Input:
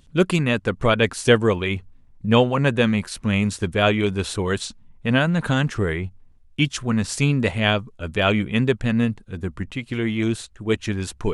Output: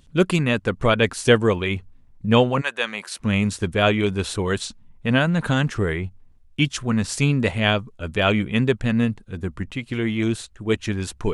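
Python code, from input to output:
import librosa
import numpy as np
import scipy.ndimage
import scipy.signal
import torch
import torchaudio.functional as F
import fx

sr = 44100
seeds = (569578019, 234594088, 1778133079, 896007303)

y = fx.highpass(x, sr, hz=fx.line((2.6, 1200.0), (3.19, 350.0)), slope=12, at=(2.6, 3.19), fade=0.02)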